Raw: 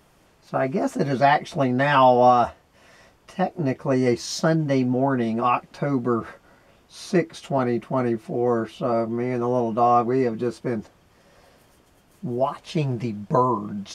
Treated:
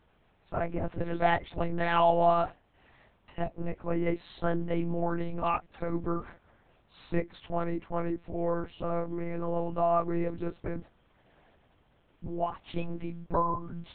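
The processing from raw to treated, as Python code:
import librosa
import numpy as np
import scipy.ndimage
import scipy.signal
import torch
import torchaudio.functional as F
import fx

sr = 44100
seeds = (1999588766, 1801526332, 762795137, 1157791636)

y = fx.lpc_monotone(x, sr, seeds[0], pitch_hz=170.0, order=8)
y = y * librosa.db_to_amplitude(-8.0)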